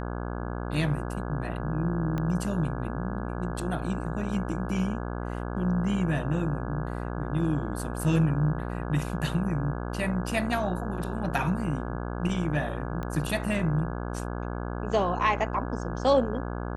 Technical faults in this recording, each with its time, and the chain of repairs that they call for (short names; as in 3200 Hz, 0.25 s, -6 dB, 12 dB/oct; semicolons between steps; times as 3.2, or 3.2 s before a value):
buzz 60 Hz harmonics 28 -33 dBFS
2.18 pop -19 dBFS
13.03 pop -22 dBFS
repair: de-click; de-hum 60 Hz, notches 28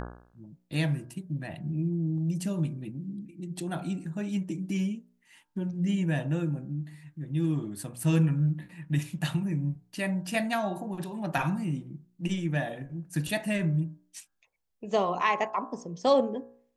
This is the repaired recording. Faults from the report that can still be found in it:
2.18 pop